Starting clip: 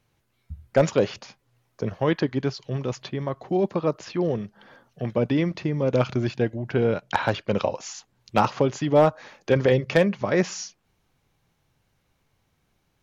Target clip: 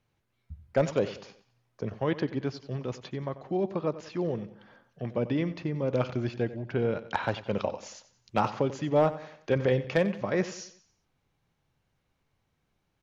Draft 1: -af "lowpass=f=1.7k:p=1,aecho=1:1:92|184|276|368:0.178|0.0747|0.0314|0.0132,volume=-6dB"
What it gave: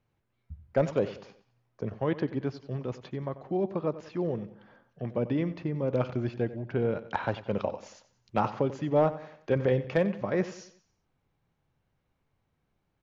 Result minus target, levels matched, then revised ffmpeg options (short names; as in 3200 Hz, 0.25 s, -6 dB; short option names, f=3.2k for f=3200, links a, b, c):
4000 Hz band -5.0 dB
-af "lowpass=f=5.3k:p=1,aecho=1:1:92|184|276|368:0.178|0.0747|0.0314|0.0132,volume=-6dB"